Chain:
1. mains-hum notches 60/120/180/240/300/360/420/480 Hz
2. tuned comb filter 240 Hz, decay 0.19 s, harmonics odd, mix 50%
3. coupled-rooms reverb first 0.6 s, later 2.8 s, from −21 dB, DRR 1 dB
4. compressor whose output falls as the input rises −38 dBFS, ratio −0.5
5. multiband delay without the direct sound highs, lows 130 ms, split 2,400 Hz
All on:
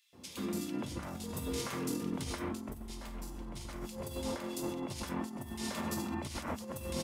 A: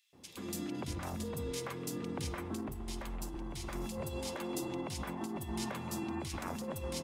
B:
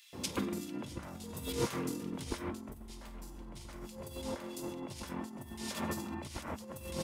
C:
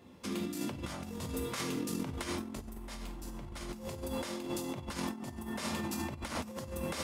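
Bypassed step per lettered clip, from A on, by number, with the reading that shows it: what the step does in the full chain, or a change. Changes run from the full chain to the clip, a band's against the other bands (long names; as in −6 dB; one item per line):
3, change in momentary loudness spread −4 LU
2, change in crest factor +5.5 dB
5, 2 kHz band +2.0 dB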